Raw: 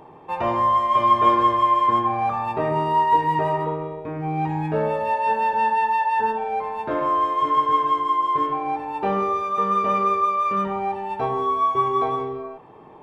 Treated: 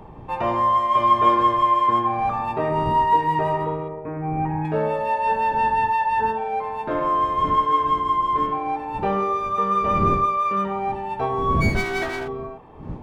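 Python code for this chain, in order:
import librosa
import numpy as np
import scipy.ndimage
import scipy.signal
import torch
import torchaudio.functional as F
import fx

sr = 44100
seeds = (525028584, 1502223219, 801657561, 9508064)

y = fx.lower_of_two(x, sr, delay_ms=3.1, at=(11.6, 12.27), fade=0.02)
y = fx.dmg_wind(y, sr, seeds[0], corner_hz=200.0, level_db=-34.0)
y = fx.lowpass(y, sr, hz=2200.0, slope=24, at=(3.88, 4.65))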